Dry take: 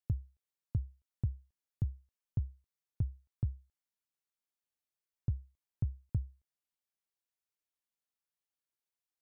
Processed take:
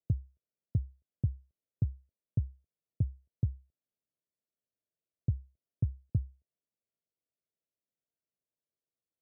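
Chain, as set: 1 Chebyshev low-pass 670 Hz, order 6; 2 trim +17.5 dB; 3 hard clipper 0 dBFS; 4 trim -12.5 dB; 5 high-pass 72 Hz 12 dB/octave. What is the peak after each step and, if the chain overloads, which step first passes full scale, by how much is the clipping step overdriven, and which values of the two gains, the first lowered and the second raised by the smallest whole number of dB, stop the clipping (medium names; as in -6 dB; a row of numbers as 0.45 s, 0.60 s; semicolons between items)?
-23.0 dBFS, -5.5 dBFS, -5.5 dBFS, -18.0 dBFS, -19.0 dBFS; nothing clips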